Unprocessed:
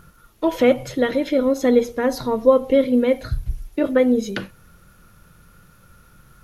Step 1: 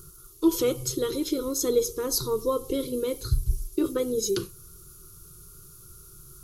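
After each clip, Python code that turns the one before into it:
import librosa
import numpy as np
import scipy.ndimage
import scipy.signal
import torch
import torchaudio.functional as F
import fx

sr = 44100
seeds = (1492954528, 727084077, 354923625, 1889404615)

y = fx.curve_eq(x, sr, hz=(150.0, 240.0, 380.0, 630.0, 1200.0, 1800.0, 4600.0, 7900.0), db=(0, -18, 10, -26, -3, -21, 5, 12))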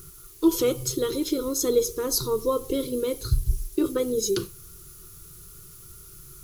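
y = fx.dmg_noise_colour(x, sr, seeds[0], colour='blue', level_db=-55.0)
y = y * 10.0 ** (1.5 / 20.0)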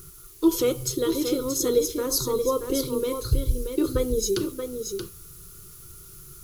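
y = x + 10.0 ** (-7.0 / 20.0) * np.pad(x, (int(629 * sr / 1000.0), 0))[:len(x)]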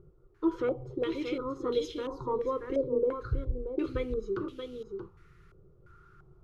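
y = fx.filter_held_lowpass(x, sr, hz=2.9, low_hz=580.0, high_hz=3100.0)
y = y * 10.0 ** (-8.5 / 20.0)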